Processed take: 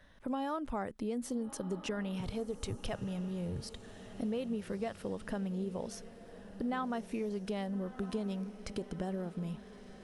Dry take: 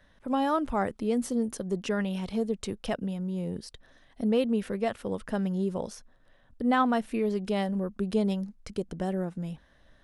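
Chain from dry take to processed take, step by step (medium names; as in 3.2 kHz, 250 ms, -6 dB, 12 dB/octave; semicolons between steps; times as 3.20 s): 2.20–3.64 s: resonant low shelf 160 Hz +8.5 dB, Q 3; compression 4:1, threshold -35 dBFS, peak gain reduction 13 dB; echo that smears into a reverb 1259 ms, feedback 55%, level -14 dB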